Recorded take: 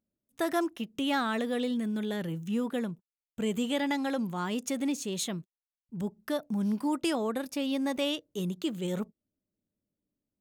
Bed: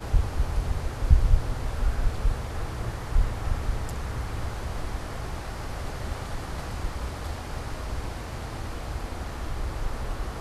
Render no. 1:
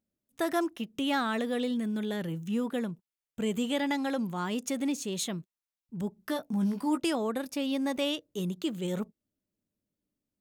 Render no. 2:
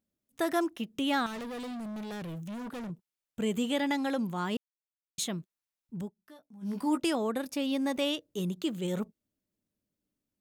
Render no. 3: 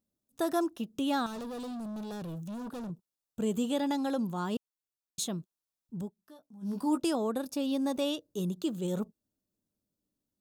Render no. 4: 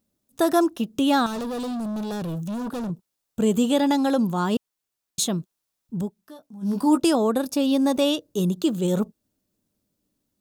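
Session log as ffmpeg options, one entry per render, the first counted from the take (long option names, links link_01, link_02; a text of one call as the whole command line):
ffmpeg -i in.wav -filter_complex "[0:a]asettb=1/sr,asplit=3[link_01][link_02][link_03];[link_01]atrim=end=6.194[link_04];[link_02]atrim=start=6.19:end=7,asetpts=PTS-STARTPTS,afade=type=in:duration=0.004:curve=qsin,afade=type=out:start_time=0.806:duration=0.004:curve=qsin,asplit=2[link_05][link_06];[link_06]adelay=16,volume=-5.5dB[link_07];[link_05][link_07]amix=inputs=2:normalize=0,atrim=end_sample=35721[link_08];[link_03]atrim=start=6.996[link_09];[link_04][link_08]acrossfade=duration=0.004:curve1=hsin:curve2=qsin[link_10];[link_10][link_09]acrossfade=duration=0.004:curve1=qsin:curve2=hsin" out.wav
ffmpeg -i in.wav -filter_complex "[0:a]asettb=1/sr,asplit=3[link_01][link_02][link_03];[link_01]atrim=end=1.264[link_04];[link_02]atrim=start=1.26:end=2.9,asetpts=PTS-STARTPTS,afade=type=in:duration=0.004:curve=qsin,afade=type=out:start_time=1.636:duration=0.004:curve=qsin,asoftclip=type=hard:threshold=-37dB[link_05];[link_03]atrim=start=2.896[link_06];[link_04][link_05]acrossfade=duration=0.004:curve1=hsin:curve2=qsin[link_07];[link_07][link_06]acrossfade=duration=0.004:curve1=qsin:curve2=hsin,asplit=5[link_08][link_09][link_10][link_11][link_12];[link_08]atrim=end=4.57,asetpts=PTS-STARTPTS,afade=type=out:start_time=4.566:duration=0.004:curve=hsin[link_13];[link_09]atrim=start=4.57:end=5.18,asetpts=PTS-STARTPTS,volume=0[link_14];[link_10]atrim=start=5.18:end=6.12,asetpts=PTS-STARTPTS,afade=type=in:duration=0.004:curve=hsin,afade=type=out:start_time=0.79:duration=0.15:silence=0.0891251[link_15];[link_11]atrim=start=6.12:end=6.61,asetpts=PTS-STARTPTS,volume=-21dB[link_16];[link_12]atrim=start=6.61,asetpts=PTS-STARTPTS,afade=type=in:duration=0.15:silence=0.0891251[link_17];[link_13][link_14][link_15][link_16][link_17]concat=n=5:v=0:a=1" out.wav
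ffmpeg -i in.wav -af "equalizer=frequency=2100:width=2.2:gain=-13.5,bandreject=frequency=3100:width=20" out.wav
ffmpeg -i in.wav -af "volume=10dB" out.wav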